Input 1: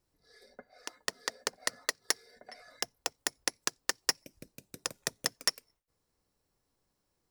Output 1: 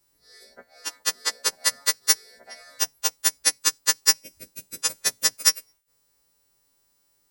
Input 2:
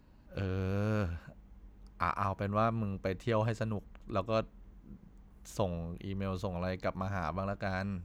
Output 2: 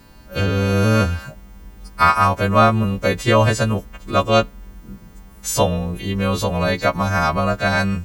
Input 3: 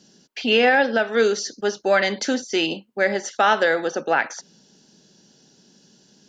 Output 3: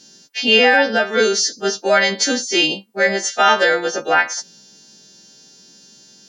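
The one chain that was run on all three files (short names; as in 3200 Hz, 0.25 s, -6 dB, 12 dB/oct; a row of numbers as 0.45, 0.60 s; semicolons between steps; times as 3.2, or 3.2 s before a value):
frequency quantiser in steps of 2 st; normalise peaks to -1.5 dBFS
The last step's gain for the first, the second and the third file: +4.5, +16.5, +3.0 dB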